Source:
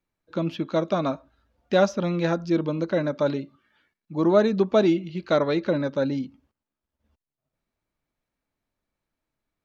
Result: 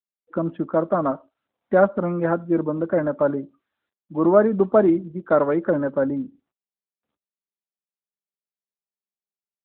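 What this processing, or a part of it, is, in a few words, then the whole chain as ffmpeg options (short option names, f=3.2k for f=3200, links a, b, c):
mobile call with aggressive noise cancelling: -af "highpass=170,highshelf=f=2k:t=q:w=1.5:g=-11.5,afftdn=nr=24:nf=-47,volume=3dB" -ar 8000 -c:a libopencore_amrnb -b:a 12200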